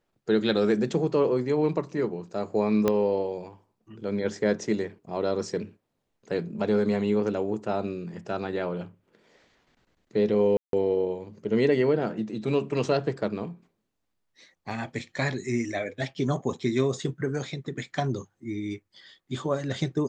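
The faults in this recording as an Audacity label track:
2.880000	2.880000	pop -10 dBFS
10.570000	10.730000	gap 0.162 s
14.700000	14.700000	gap 4.9 ms

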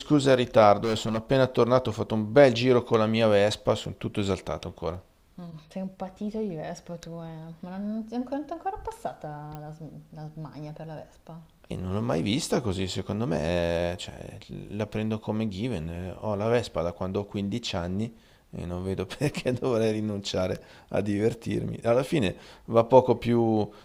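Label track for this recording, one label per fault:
0.830000	1.180000	clipped -22.5 dBFS
9.550000	9.550000	pop -26 dBFS

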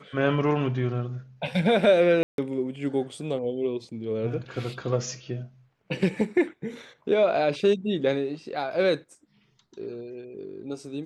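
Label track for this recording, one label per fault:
2.230000	2.380000	gap 0.152 s

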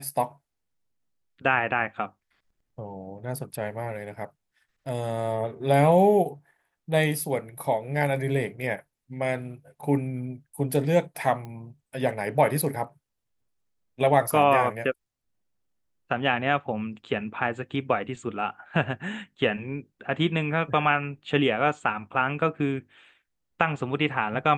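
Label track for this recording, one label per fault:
11.450000	11.450000	pop -27 dBFS

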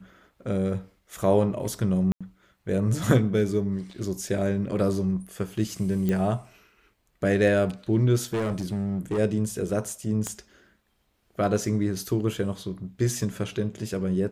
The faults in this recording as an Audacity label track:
2.120000	2.210000	gap 86 ms
6.090000	6.090000	pop -15 dBFS
8.230000	9.190000	clipped -23.5 dBFS
10.270000	10.270000	pop -17 dBFS

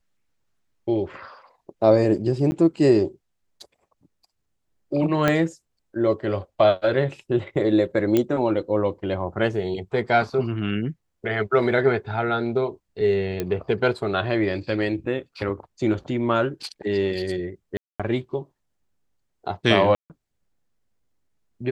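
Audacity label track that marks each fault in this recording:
2.510000	2.520000	gap 10 ms
5.280000	5.280000	pop -7 dBFS
8.170000	8.170000	pop -8 dBFS
13.400000	13.400000	pop -12 dBFS
17.770000	18.000000	gap 0.226 s
19.950000	20.100000	gap 0.148 s

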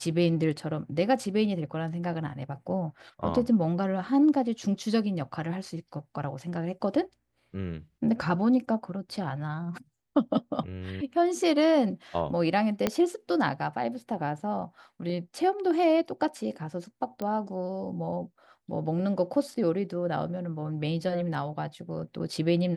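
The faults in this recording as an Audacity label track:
12.870000	12.870000	pop -10 dBFS
17.220000	17.220000	pop -21 dBFS

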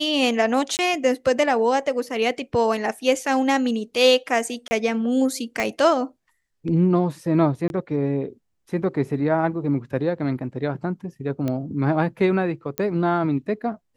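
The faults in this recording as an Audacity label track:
0.770000	0.790000	gap 19 ms
4.680000	4.710000	gap 30 ms
5.600000	5.600000	pop -11 dBFS
7.680000	7.700000	gap 21 ms
11.480000	11.480000	pop -14 dBFS
12.780000	12.780000	pop -9 dBFS

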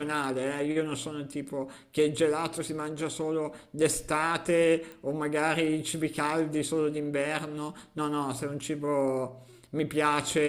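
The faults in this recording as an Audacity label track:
4.920000	4.920000	pop -29 dBFS

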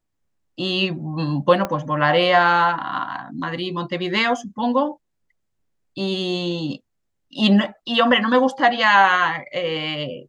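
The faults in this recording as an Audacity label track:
1.650000	1.650000	pop -10 dBFS

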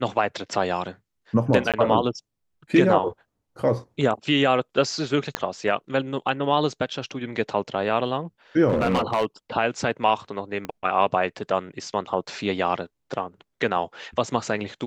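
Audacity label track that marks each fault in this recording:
1.720000	1.740000	gap 17 ms
5.350000	5.350000	pop -8 dBFS
8.680000	9.250000	clipped -16.5 dBFS
10.650000	10.650000	pop -17 dBFS

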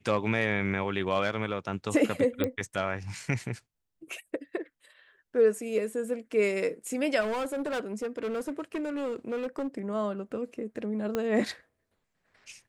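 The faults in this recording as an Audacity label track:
2.440000	2.440000	pop -15 dBFS
7.200000	9.680000	clipped -28 dBFS
11.150000	11.150000	pop -16 dBFS

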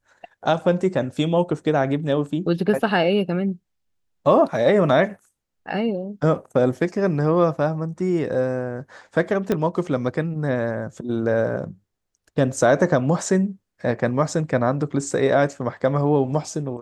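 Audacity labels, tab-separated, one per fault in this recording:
9.520000	9.520000	pop -9 dBFS

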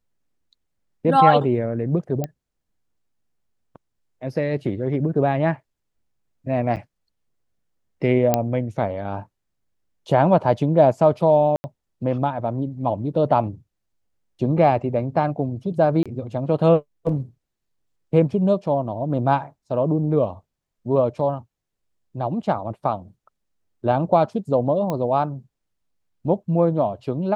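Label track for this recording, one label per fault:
2.240000	2.240000	pop -13 dBFS
6.760000	6.770000	gap 8.3 ms
8.340000	8.340000	pop -4 dBFS
11.560000	11.640000	gap 80 ms
16.030000	16.060000	gap 26 ms
24.900000	24.900000	pop -13 dBFS

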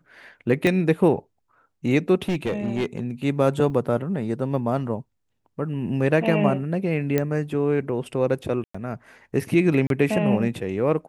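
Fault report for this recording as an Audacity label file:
0.670000	0.670000	pop -10 dBFS
2.280000	2.990000	clipped -19.5 dBFS
3.700000	3.700000	gap 3.2 ms
7.180000	7.180000	pop -9 dBFS
8.640000	8.740000	gap 0.105 s
9.870000	9.900000	gap 32 ms

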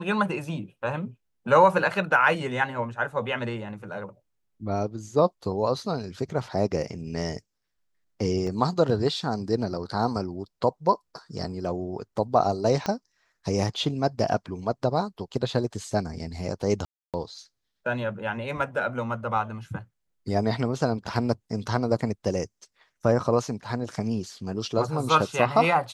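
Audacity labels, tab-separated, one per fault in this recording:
8.470000	8.470000	gap 3.4 ms
12.860000	12.860000	pop -14 dBFS
16.850000	17.140000	gap 0.287 s

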